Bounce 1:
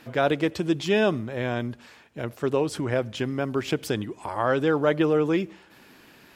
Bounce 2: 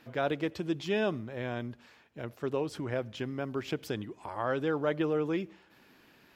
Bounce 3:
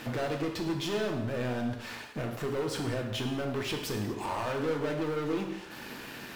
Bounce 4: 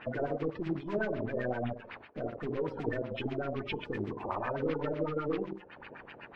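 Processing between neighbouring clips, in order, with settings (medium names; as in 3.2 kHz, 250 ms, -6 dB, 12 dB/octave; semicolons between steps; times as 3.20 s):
peaking EQ 8.9 kHz -6 dB 0.78 oct; trim -8 dB
compression 2.5:1, threshold -45 dBFS, peak gain reduction 14 dB; waveshaping leveller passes 5; reverberation, pre-delay 3 ms, DRR 2 dB; trim -2 dB
coarse spectral quantiser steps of 30 dB; power-law waveshaper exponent 1.4; LFO low-pass sine 7.9 Hz 470–2600 Hz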